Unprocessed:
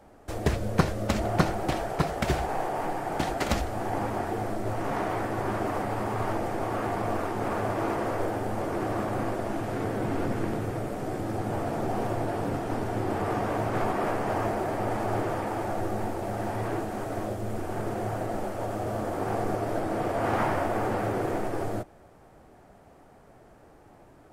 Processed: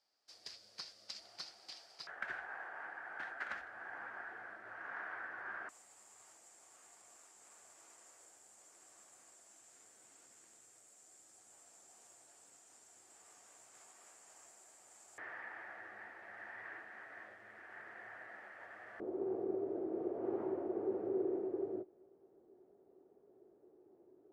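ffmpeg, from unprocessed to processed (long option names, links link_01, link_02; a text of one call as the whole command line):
ffmpeg -i in.wav -af "asetnsamples=nb_out_samples=441:pad=0,asendcmd='2.07 bandpass f 1600;5.69 bandpass f 7400;15.18 bandpass f 1800;19 bandpass f 380',bandpass=frequency=4800:width_type=q:width=7.7:csg=0" out.wav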